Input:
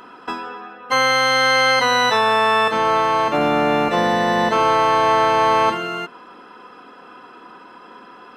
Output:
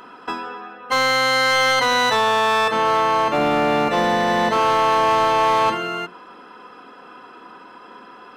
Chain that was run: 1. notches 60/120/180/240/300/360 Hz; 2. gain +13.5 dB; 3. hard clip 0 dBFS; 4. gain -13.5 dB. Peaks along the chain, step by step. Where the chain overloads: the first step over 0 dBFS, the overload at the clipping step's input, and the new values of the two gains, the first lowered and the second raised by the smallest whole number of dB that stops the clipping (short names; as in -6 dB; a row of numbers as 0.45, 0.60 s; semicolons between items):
-5.5, +8.0, 0.0, -13.5 dBFS; step 2, 8.0 dB; step 2 +5.5 dB, step 4 -5.5 dB